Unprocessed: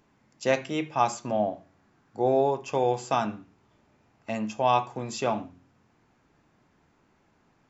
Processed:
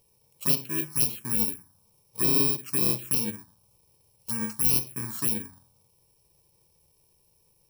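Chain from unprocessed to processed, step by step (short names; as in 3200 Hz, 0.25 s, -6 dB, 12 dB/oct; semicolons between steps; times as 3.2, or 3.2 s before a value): FFT order left unsorted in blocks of 64 samples; envelope phaser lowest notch 250 Hz, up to 1600 Hz, full sweep at -21 dBFS; gain +1.5 dB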